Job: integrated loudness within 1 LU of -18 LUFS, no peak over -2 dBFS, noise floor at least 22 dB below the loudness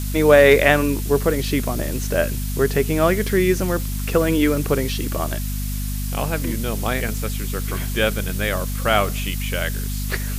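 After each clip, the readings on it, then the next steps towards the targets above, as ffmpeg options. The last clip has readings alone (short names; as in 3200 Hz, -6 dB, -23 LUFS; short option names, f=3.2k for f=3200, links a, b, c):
hum 50 Hz; harmonics up to 250 Hz; hum level -23 dBFS; noise floor -25 dBFS; noise floor target -43 dBFS; loudness -20.5 LUFS; peak -2.0 dBFS; loudness target -18.0 LUFS
-> -af "bandreject=f=50:t=h:w=6,bandreject=f=100:t=h:w=6,bandreject=f=150:t=h:w=6,bandreject=f=200:t=h:w=6,bandreject=f=250:t=h:w=6"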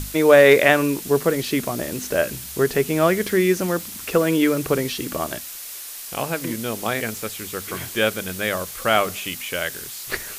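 hum none; noise floor -35 dBFS; noise floor target -43 dBFS
-> -af "afftdn=nr=8:nf=-35"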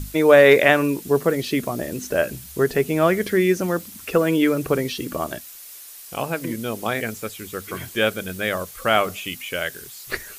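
noise floor -41 dBFS; noise floor target -43 dBFS
-> -af "afftdn=nr=6:nf=-41"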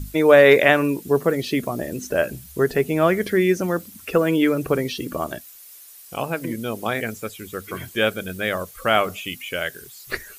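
noise floor -44 dBFS; loudness -21.0 LUFS; peak -2.0 dBFS; loudness target -18.0 LUFS
-> -af "volume=3dB,alimiter=limit=-2dB:level=0:latency=1"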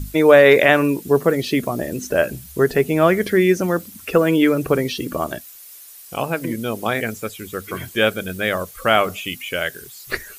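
loudness -18.5 LUFS; peak -2.0 dBFS; noise floor -41 dBFS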